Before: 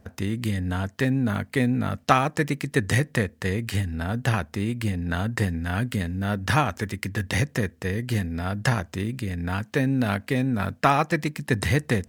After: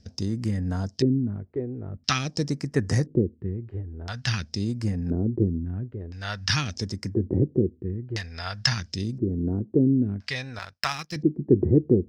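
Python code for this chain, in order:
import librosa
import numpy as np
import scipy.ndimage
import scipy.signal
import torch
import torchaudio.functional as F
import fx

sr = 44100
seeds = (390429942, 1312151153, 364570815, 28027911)

y = fx.filter_lfo_lowpass(x, sr, shape='square', hz=0.49, low_hz=360.0, high_hz=5200.0, q=6.4)
y = fx.phaser_stages(y, sr, stages=2, low_hz=210.0, high_hz=3500.0, hz=0.45, feedback_pct=35)
y = fx.power_curve(y, sr, exponent=1.4, at=(10.59, 11.16))
y = y * librosa.db_to_amplitude(-2.0)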